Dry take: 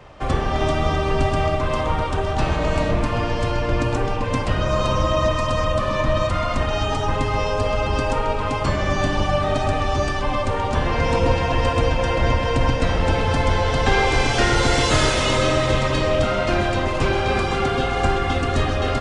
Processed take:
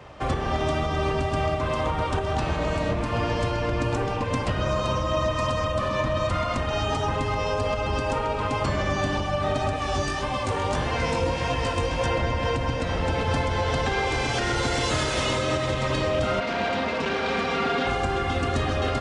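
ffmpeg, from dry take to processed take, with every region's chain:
ffmpeg -i in.wav -filter_complex "[0:a]asettb=1/sr,asplit=3[link_01][link_02][link_03];[link_01]atrim=end=9.764[link_04];[link_02]atrim=start=9.76:end=12.06,asetpts=PTS-STARTPTS,afade=type=in:duration=0.004:curve=qsin,afade=type=out:start_time=2.296:duration=0.004:curve=qsin,highshelf=frequency=5200:gain=9,flanger=delay=15.5:depth=5.6:speed=1.7[link_05];[link_03]atrim=start=12.056[link_06];[link_04][link_05]acrossfade=duration=0.004:curve1=hsin:curve2=qsin[link_07];[link_07][link_06]acrossfade=duration=0.004:curve1=qsin:curve2=hsin,asettb=1/sr,asplit=3[link_08][link_09][link_10];[link_08]atrim=end=16.404[link_11];[link_09]atrim=start=16.4:end=17.87,asetpts=PTS-STARTPTS,afade=type=in:duration=0.004:curve=qsin,afade=type=out:start_time=1.466:duration=0.004:curve=qsin,asoftclip=type=hard:threshold=-23.5dB,highpass=120,lowpass=4600,aecho=1:1:4.3:0.73,atrim=end_sample=64827[link_12];[link_10]atrim=start=17.866[link_13];[link_11][link_12]acrossfade=duration=0.004:curve1=hsin:curve2=qsin[link_14];[link_14][link_13]acrossfade=duration=0.004:curve1=qsin:curve2=hsin,alimiter=limit=-14.5dB:level=0:latency=1:release=225,highpass=49" out.wav

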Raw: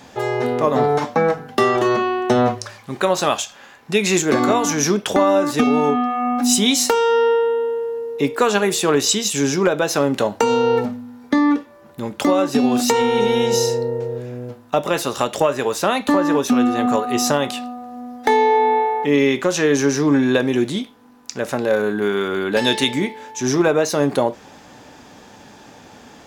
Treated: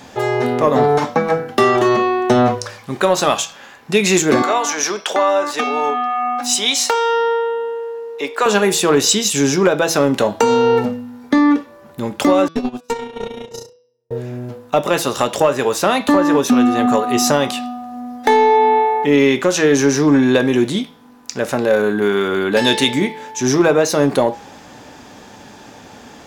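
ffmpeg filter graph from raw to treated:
ffmpeg -i in.wav -filter_complex "[0:a]asettb=1/sr,asplit=3[link_01][link_02][link_03];[link_01]atrim=end=4.424[link_04];[link_02]atrim=start=4.42:end=8.46,asetpts=PTS-STARTPTS,afade=type=in:duration=0.004:curve=qsin,afade=type=out:start_time=4.036:duration=0.004:curve=qsin,highpass=600,equalizer=frequency=13000:width_type=o:width=1:gain=-9[link_05];[link_03]atrim=start=8.456[link_06];[link_04][link_05]acrossfade=duration=0.004:curve1=hsin:curve2=qsin[link_07];[link_07][link_06]acrossfade=duration=0.004:curve1=qsin:curve2=hsin,asettb=1/sr,asplit=3[link_08][link_09][link_10];[link_08]atrim=end=12.484[link_11];[link_09]atrim=start=12.48:end=14.11,asetpts=PTS-STARTPTS,afade=type=in:duration=0.004:curve=qsin,afade=type=out:start_time=1.626:duration=0.004:curve=qsin,agate=range=-52dB:threshold=-15dB:ratio=16:release=100:detection=peak,aeval=exprs='(tanh(4.47*val(0)+0.45)-tanh(0.45))/4.47':channel_layout=same[link_12];[link_10]atrim=start=14.106[link_13];[link_11][link_12]acrossfade=duration=0.004:curve1=hsin:curve2=qsin[link_14];[link_14][link_13]acrossfade=duration=0.004:curve1=qsin:curve2=hsin,bandreject=frequency=163.7:width_type=h:width=4,bandreject=frequency=327.4:width_type=h:width=4,bandreject=frequency=491.1:width_type=h:width=4,bandreject=frequency=654.8:width_type=h:width=4,bandreject=frequency=818.5:width_type=h:width=4,bandreject=frequency=982.2:width_type=h:width=4,bandreject=frequency=1145.9:width_type=h:width=4,bandreject=frequency=1309.6:width_type=h:width=4,bandreject=frequency=1473.3:width_type=h:width=4,bandreject=frequency=1637:width_type=h:width=4,bandreject=frequency=1800.7:width_type=h:width=4,bandreject=frequency=1964.4:width_type=h:width=4,bandreject=frequency=2128.1:width_type=h:width=4,bandreject=frequency=2291.8:width_type=h:width=4,bandreject=frequency=2455.5:width_type=h:width=4,bandreject=frequency=2619.2:width_type=h:width=4,bandreject=frequency=2782.9:width_type=h:width=4,bandreject=frequency=2946.6:width_type=h:width=4,bandreject=frequency=3110.3:width_type=h:width=4,bandreject=frequency=3274:width_type=h:width=4,bandreject=frequency=3437.7:width_type=h:width=4,bandreject=frequency=3601.4:width_type=h:width=4,bandreject=frequency=3765.1:width_type=h:width=4,bandreject=frequency=3928.8:width_type=h:width=4,bandreject=frequency=4092.5:width_type=h:width=4,bandreject=frequency=4256.2:width_type=h:width=4,bandreject=frequency=4419.9:width_type=h:width=4,bandreject=frequency=4583.6:width_type=h:width=4,bandreject=frequency=4747.3:width_type=h:width=4,bandreject=frequency=4911:width_type=h:width=4,bandreject=frequency=5074.7:width_type=h:width=4,bandreject=frequency=5238.4:width_type=h:width=4,bandreject=frequency=5402.1:width_type=h:width=4,bandreject=frequency=5565.8:width_type=h:width=4,bandreject=frequency=5729.5:width_type=h:width=4,bandreject=frequency=5893.2:width_type=h:width=4,acontrast=24,volume=-1dB" out.wav

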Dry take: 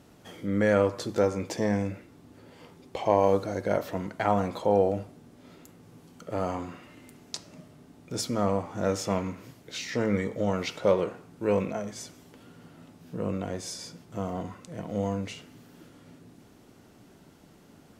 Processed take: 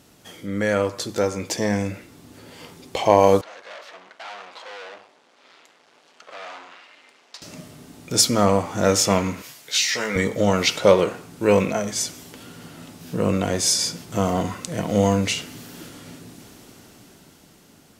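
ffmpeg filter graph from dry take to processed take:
ffmpeg -i in.wav -filter_complex "[0:a]asettb=1/sr,asplit=3[link_01][link_02][link_03];[link_01]atrim=end=3.414[link_04];[link_02]atrim=start=3.41:end=7.42,asetpts=PTS-STARTPTS,afade=type=in:duration=0.004:curve=qsin,afade=type=out:start_time=4.006:duration=0.004:curve=qsin,aeval=exprs='max(val(0),0)':channel_layout=same,aeval=exprs='(tanh(31.6*val(0)+0.5)-tanh(0.5))/31.6':channel_layout=same,highpass=660,lowpass=4000[link_05];[link_03]atrim=start=7.416[link_06];[link_04][link_05]acrossfade=duration=0.004:curve1=hsin:curve2=qsin[link_07];[link_07][link_06]acrossfade=duration=0.004:curve1=qsin:curve2=hsin,asettb=1/sr,asplit=3[link_08][link_09][link_10];[link_08]atrim=end=9.424[link_11];[link_09]atrim=start=9.42:end=10.16,asetpts=PTS-STARTPTS,afade=type=in:duration=0.004:curve=qsin,afade=type=out:start_time=0.736:duration=0.004:curve=qsin,highpass=210,equalizer=frequency=280:width_type=o:width=2.4:gain=-13.5,asplit=2[link_12][link_13];[link_13]adelay=14,volume=-5.5dB[link_14];[link_12][link_14]amix=inputs=2:normalize=0,atrim=end_sample=32634[link_15];[link_10]atrim=start=10.156[link_16];[link_11][link_15]acrossfade=duration=0.004:curve1=hsin:curve2=qsin[link_17];[link_17][link_16]acrossfade=duration=0.004:curve1=qsin:curve2=hsin,highshelf=frequency=2200:gain=10,dynaudnorm=framelen=330:gausssize=11:maxgain=11dB" out.wav

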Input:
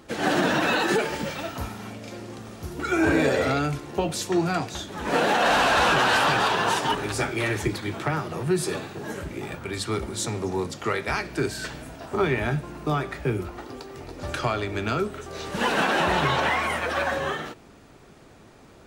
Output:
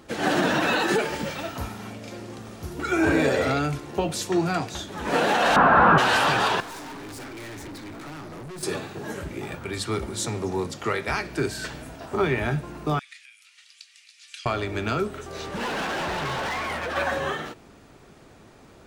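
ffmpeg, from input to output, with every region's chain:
ffmpeg -i in.wav -filter_complex "[0:a]asettb=1/sr,asplit=3[link_01][link_02][link_03];[link_01]atrim=end=5.564[link_04];[link_02]atrim=start=5.56:end=5.98,asetpts=PTS-STARTPTS,afade=type=in:duration=0.004:curve=qsin,afade=type=out:start_time=0.416:duration=0.004:curve=qsin,lowpass=frequency=1300:width_type=q:width=2.3,equalizer=frequency=180:width_type=o:width=1.2:gain=10.5[link_05];[link_03]atrim=start=5.976[link_06];[link_04][link_05]acrossfade=duration=0.004:curve1=hsin:curve2=qsin[link_07];[link_07][link_06]acrossfade=duration=0.004:curve1=qsin:curve2=hsin,asettb=1/sr,asplit=3[link_08][link_09][link_10];[link_08]atrim=end=6.604[link_11];[link_09]atrim=start=6.6:end=8.63,asetpts=PTS-STARTPTS,afade=type=in:duration=0.004:curve=qsin,afade=type=out:start_time=2.026:duration=0.004:curve=qsin,asuperstop=centerf=3000:order=8:qfactor=2.9,equalizer=frequency=280:width_type=o:width=0.3:gain=12,aeval=exprs='(tanh(70.8*val(0)+0.2)-tanh(0.2))/70.8':channel_layout=same[link_12];[link_10]atrim=start=8.626[link_13];[link_11][link_12]acrossfade=duration=0.004:curve1=hsin:curve2=qsin[link_14];[link_14][link_13]acrossfade=duration=0.004:curve1=qsin:curve2=hsin,asettb=1/sr,asplit=3[link_15][link_16][link_17];[link_15]atrim=end=12.994[link_18];[link_16]atrim=start=12.99:end=14.46,asetpts=PTS-STARTPTS,afade=type=in:duration=0.004:curve=qsin,afade=type=out:start_time=1.466:duration=0.004:curve=qsin,acompressor=threshold=-30dB:ratio=3:attack=3.2:release=140:knee=1:detection=peak,asuperpass=centerf=5200:order=8:qfactor=0.63[link_19];[link_17]atrim=start=14.456[link_20];[link_18][link_19]acrossfade=duration=0.004:curve1=hsin:curve2=qsin[link_21];[link_21][link_20]acrossfade=duration=0.004:curve1=qsin:curve2=hsin,asettb=1/sr,asplit=3[link_22][link_23][link_24];[link_22]atrim=end=15.464[link_25];[link_23]atrim=start=15.46:end=16.96,asetpts=PTS-STARTPTS,afade=type=in:duration=0.004:curve=qsin,afade=type=out:start_time=1.496:duration=0.004:curve=qsin,highshelf=frequency=4800:gain=-8,asoftclip=type=hard:threshold=-26.5dB[link_26];[link_24]atrim=start=16.956[link_27];[link_25][link_26]acrossfade=duration=0.004:curve1=hsin:curve2=qsin[link_28];[link_28][link_27]acrossfade=duration=0.004:curve1=qsin:curve2=hsin" out.wav

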